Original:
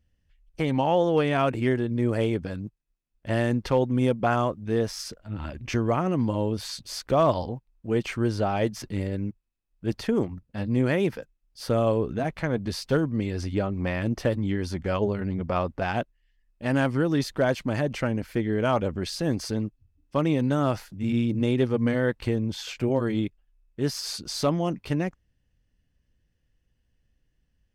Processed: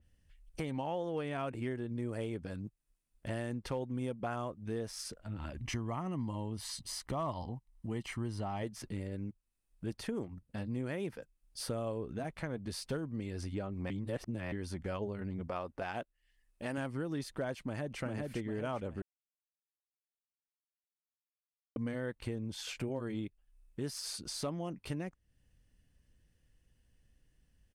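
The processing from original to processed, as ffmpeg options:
-filter_complex "[0:a]asettb=1/sr,asplit=3[a][b][c];[a]atrim=end=5.574[d];[b]atrim=start=5.57:end=8.63,asetpts=PTS-STARTPTS,afade=t=in:d=0.004:c=qsin,afade=t=out:st=3.056:d=0.004:c=qsin,aecho=1:1:1:0.49,atrim=end_sample=134946[e];[c]atrim=start=8.626[f];[d][e]acrossfade=d=0.004:c1=hsin:c2=qsin[g];[g][f]acrossfade=d=0.004:c1=qsin:c2=hsin,asettb=1/sr,asplit=3[h][i][j];[h]atrim=end=15.484[k];[i]atrim=start=15.48:end=16.78,asetpts=PTS-STARTPTS,afade=t=in:d=0.004:c=qsin,afade=t=out:st=1.296:d=0.004:c=qsin,bass=f=250:g=-7,treble=f=4k:g=0[l];[j]atrim=start=16.776[m];[k][l]acrossfade=d=0.004:c1=hsin:c2=qsin[n];[n][m]acrossfade=d=0.004:c1=qsin:c2=hsin,asplit=2[o][p];[p]afade=t=in:st=17.58:d=0.01,afade=t=out:st=18:d=0.01,aecho=0:1:400|800|1200|1600|2000:0.749894|0.299958|0.119983|0.0479932|0.0191973[q];[o][q]amix=inputs=2:normalize=0,asplit=5[r][s][t][u][v];[r]atrim=end=13.902[w];[s]atrim=start=13.898:end=14.522,asetpts=PTS-STARTPTS,areverse[x];[t]atrim=start=14.518:end=19.02,asetpts=PTS-STARTPTS,afade=t=out:st=4.498:d=0.004:c=hsin[y];[u]atrim=start=19.02:end=21.76,asetpts=PTS-STARTPTS,volume=0[z];[v]atrim=start=21.76,asetpts=PTS-STARTPTS,afade=t=in:d=0.004:c=hsin[aa];[w][x]acrossfade=d=0.004:c1=hsin:c2=hsin[ab];[y][z][aa]concat=n=3:v=0:a=1[ac];[ab][ac]acrossfade=d=0.004:c1=hsin:c2=hsin,equalizer=f=9.3k:w=1.9:g=9.5,acompressor=threshold=-43dB:ratio=2.5,adynamicequalizer=threshold=0.00158:dfrequency=3700:dqfactor=0.7:tfrequency=3700:tqfactor=0.7:attack=5:release=100:ratio=0.375:range=2:mode=cutabove:tftype=highshelf,volume=1dB"

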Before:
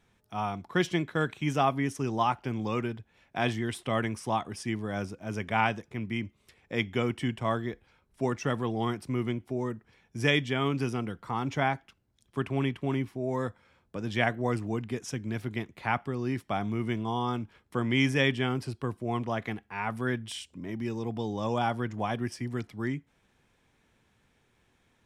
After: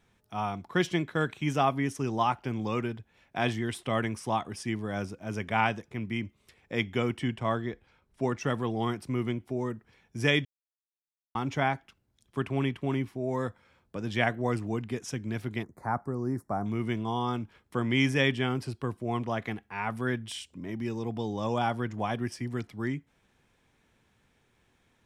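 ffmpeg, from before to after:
-filter_complex "[0:a]asettb=1/sr,asplit=3[a][b][c];[a]atrim=end=7.194[d];[b]atrim=start=7.19:end=8.41,asetpts=PTS-STARTPTS,afade=t=in:d=0.004:c=qsin,afade=t=out:st=1.216:d=0.004:c=qsin,highshelf=f=9.4k:g=-9[e];[c]atrim=start=8.406[f];[d][e]acrossfade=d=0.004:c1=hsin:c2=qsin[g];[g][f]acrossfade=d=0.004:c1=qsin:c2=hsin,asettb=1/sr,asplit=3[h][i][j];[h]atrim=end=15.634[k];[i]atrim=start=15.63:end=16.66,asetpts=PTS-STARTPTS,afade=t=in:d=0.004:c=qsin,afade=t=out:st=1.026:d=0.004:c=qsin,asuperstop=centerf=3000:order=4:qfactor=0.56[l];[j]atrim=start=16.656[m];[k][l]acrossfade=d=0.004:c1=hsin:c2=qsin[n];[n][m]acrossfade=d=0.004:c1=qsin:c2=hsin,asplit=3[o][p][q];[o]atrim=end=10.45,asetpts=PTS-STARTPTS,afade=t=out:st=10.446:d=0.004:c=hsin[r];[p]atrim=start=10.45:end=11.35,asetpts=PTS-STARTPTS,volume=0[s];[q]atrim=start=11.35,asetpts=PTS-STARTPTS,afade=t=in:d=0.004:c=hsin[t];[r][s][t]concat=n=3:v=0:a=1"

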